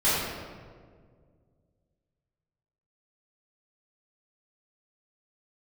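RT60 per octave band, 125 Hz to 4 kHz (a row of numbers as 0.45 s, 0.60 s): 2.8 s, 2.4 s, 2.2 s, 1.6 s, 1.3 s, 1.0 s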